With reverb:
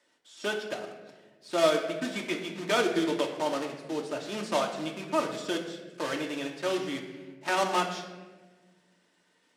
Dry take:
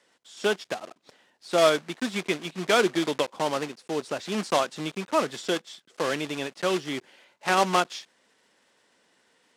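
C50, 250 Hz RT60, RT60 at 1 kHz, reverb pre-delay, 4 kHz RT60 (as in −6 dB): 7.0 dB, 2.0 s, 1.1 s, 3 ms, 0.85 s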